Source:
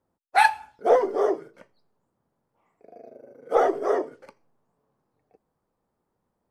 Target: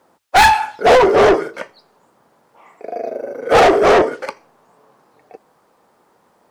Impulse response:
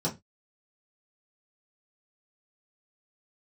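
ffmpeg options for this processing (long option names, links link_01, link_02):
-filter_complex "[0:a]bandreject=frequency=50:width_type=h:width=6,bandreject=frequency=100:width_type=h:width=6,asplit=2[link_01][link_02];[link_02]highpass=frequency=720:poles=1,volume=30dB,asoftclip=type=tanh:threshold=-4.5dB[link_03];[link_01][link_03]amix=inputs=2:normalize=0,lowpass=frequency=6200:poles=1,volume=-6dB,volume=2dB"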